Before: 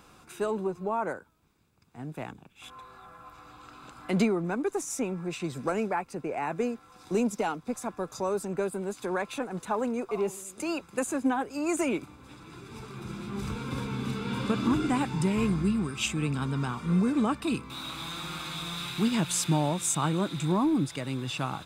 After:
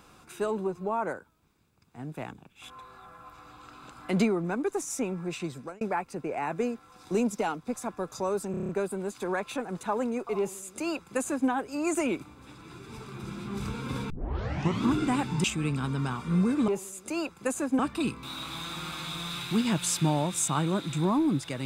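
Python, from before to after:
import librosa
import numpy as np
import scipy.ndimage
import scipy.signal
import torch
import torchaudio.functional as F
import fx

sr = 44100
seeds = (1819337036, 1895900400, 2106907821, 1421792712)

y = fx.edit(x, sr, fx.fade_out_span(start_s=5.4, length_s=0.41),
    fx.stutter(start_s=8.51, slice_s=0.03, count=7),
    fx.duplicate(start_s=10.2, length_s=1.11, to_s=17.26),
    fx.tape_start(start_s=13.92, length_s=0.74),
    fx.cut(start_s=15.26, length_s=0.76), tone=tone)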